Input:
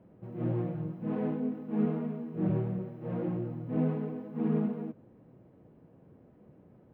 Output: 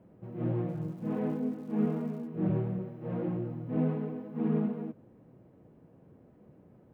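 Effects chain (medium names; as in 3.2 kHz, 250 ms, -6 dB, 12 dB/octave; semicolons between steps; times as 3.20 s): 0.68–2.26 s: crackle 300 per s -54 dBFS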